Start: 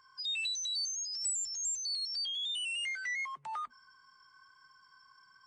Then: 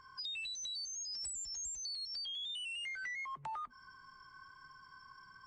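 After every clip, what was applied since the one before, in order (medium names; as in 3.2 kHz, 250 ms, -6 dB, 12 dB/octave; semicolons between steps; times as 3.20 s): tilt EQ -2.5 dB/octave; compression, threshold -47 dBFS, peak gain reduction 10.5 dB; trim +6 dB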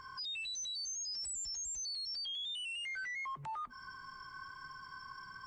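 peak limiter -44.5 dBFS, peak gain reduction 11 dB; trim +7.5 dB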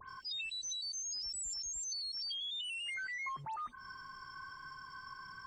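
phase dispersion highs, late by 99 ms, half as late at 3 kHz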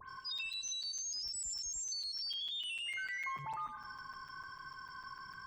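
tape echo 103 ms, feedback 59%, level -7.5 dB, low-pass 3.2 kHz; crackling interface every 0.15 s, samples 256, zero, from 0.38 s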